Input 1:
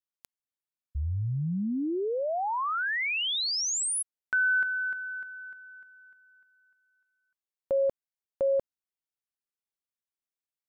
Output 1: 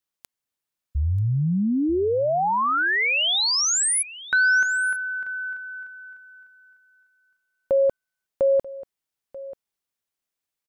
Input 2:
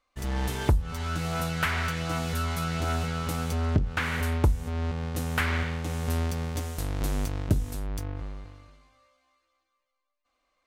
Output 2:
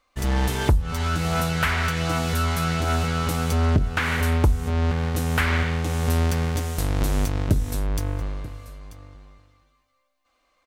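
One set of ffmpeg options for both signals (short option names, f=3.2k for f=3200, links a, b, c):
-filter_complex "[0:a]asplit=2[a][b];[b]alimiter=limit=-23.5dB:level=0:latency=1:release=225,volume=3dB[c];[a][c]amix=inputs=2:normalize=0,aecho=1:1:937:0.133"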